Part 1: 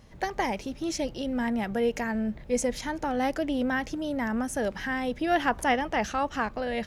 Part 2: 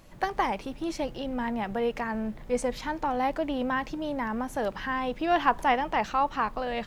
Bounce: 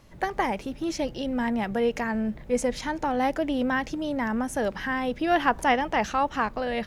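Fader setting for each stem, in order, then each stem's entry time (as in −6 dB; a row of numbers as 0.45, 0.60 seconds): −2.0, −5.0 decibels; 0.00, 0.00 seconds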